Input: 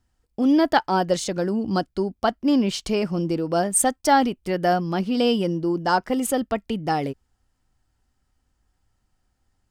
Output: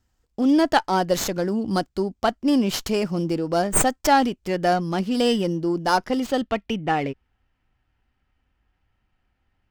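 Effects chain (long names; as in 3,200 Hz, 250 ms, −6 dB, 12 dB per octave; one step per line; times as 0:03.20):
low-pass filter sweep 7,600 Hz → 2,600 Hz, 0:05.84–0:06.75
windowed peak hold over 3 samples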